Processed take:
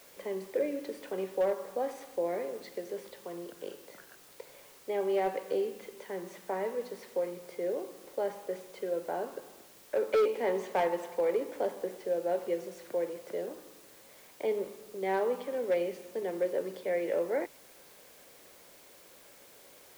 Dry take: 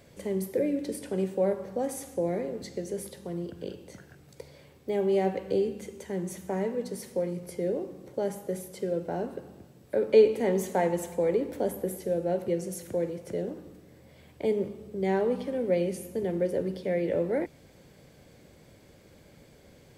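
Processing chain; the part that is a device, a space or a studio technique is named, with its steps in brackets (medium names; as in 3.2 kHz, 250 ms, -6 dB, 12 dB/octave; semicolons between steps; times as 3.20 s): drive-through speaker (band-pass 460–3300 Hz; peaking EQ 1.1 kHz +4.5 dB 0.46 oct; hard clipper -22 dBFS, distortion -14 dB; white noise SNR 23 dB)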